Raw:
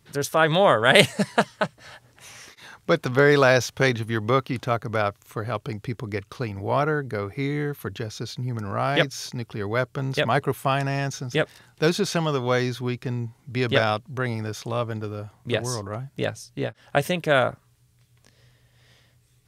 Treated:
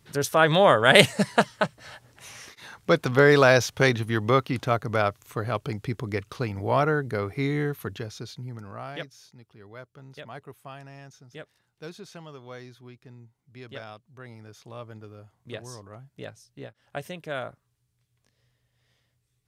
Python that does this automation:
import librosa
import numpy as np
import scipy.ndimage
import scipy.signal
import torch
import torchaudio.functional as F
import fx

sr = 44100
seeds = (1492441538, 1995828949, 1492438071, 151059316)

y = fx.gain(x, sr, db=fx.line((7.67, 0.0), (8.54, -9.0), (9.28, -19.5), (13.96, -19.5), (14.93, -13.0)))